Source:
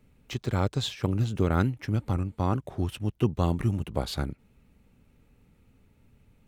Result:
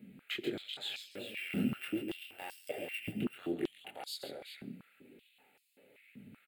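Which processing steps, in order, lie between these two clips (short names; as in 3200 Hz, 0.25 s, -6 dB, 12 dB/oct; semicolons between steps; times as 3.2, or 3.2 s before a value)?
1.15–3.1 sample sorter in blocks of 16 samples; limiter -17.5 dBFS, peak gain reduction 6.5 dB; compressor 12:1, threshold -37 dBFS, peak gain reduction 16 dB; transient shaper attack -2 dB, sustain +3 dB; fixed phaser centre 2500 Hz, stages 4; chorus voices 6, 0.77 Hz, delay 24 ms, depth 4.6 ms; tapped delay 0.136/0.383 s -7.5/-10 dB; reverb RT60 0.70 s, pre-delay 27 ms, DRR 17.5 dB; stepped high-pass 5.2 Hz 210–5400 Hz; gain +8 dB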